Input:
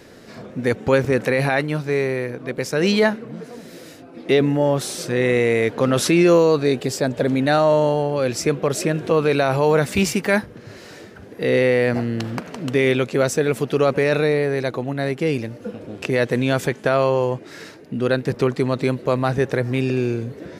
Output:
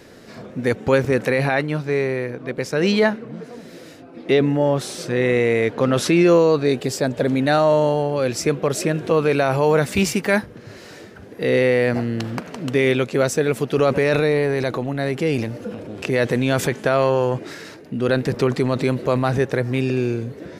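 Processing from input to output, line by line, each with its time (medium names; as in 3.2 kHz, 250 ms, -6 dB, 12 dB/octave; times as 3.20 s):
1.38–6.69 s: treble shelf 7.3 kHz -7.5 dB
9.23–9.75 s: band-stop 3.9 kHz, Q 11
13.76–19.40 s: transient shaper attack 0 dB, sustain +6 dB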